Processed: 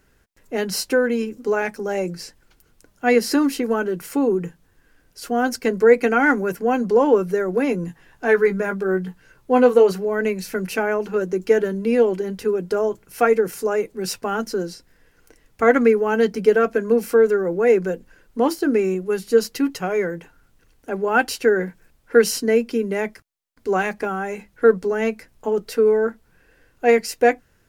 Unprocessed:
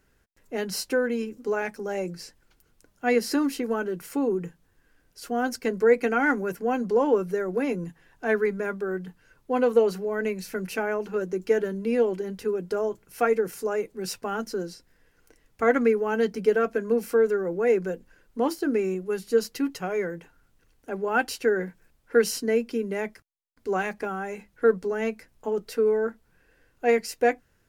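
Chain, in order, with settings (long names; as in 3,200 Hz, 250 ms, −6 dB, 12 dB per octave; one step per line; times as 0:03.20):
0:07.86–0:09.92: double-tracking delay 16 ms −6 dB
level +6 dB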